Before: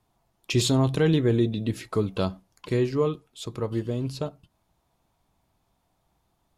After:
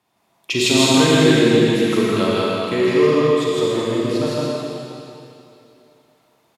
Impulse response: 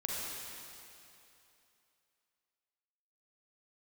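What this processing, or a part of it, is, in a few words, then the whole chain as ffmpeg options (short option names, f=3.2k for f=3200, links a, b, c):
stadium PA: -filter_complex "[0:a]highpass=190,equalizer=f=2.4k:t=o:w=1.6:g=5.5,aecho=1:1:160.3|198.3:1|0.355[a];[1:a]atrim=start_sample=2205[b];[a][b]afir=irnorm=-1:irlink=0,volume=3.5dB"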